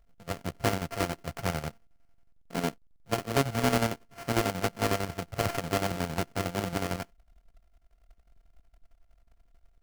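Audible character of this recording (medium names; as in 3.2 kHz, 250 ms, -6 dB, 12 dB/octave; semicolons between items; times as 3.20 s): a buzz of ramps at a fixed pitch in blocks of 64 samples; chopped level 11 Hz, depth 60%, duty 55%; aliases and images of a low sample rate 3.7 kHz, jitter 20%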